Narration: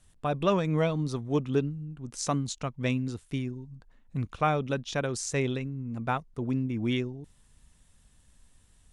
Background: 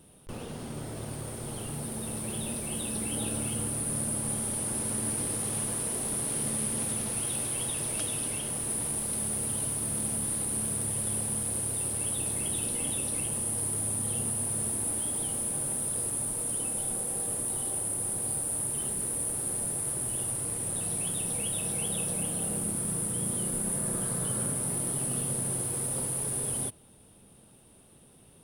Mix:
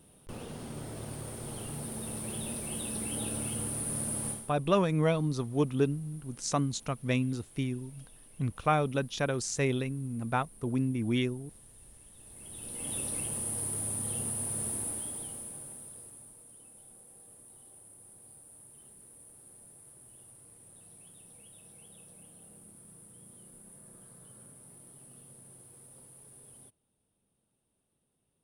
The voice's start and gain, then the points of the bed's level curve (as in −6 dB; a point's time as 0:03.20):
4.25 s, −0.5 dB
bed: 0:04.29 −3 dB
0:04.57 −25 dB
0:12.13 −25 dB
0:12.96 −3.5 dB
0:14.77 −3.5 dB
0:16.47 −22.5 dB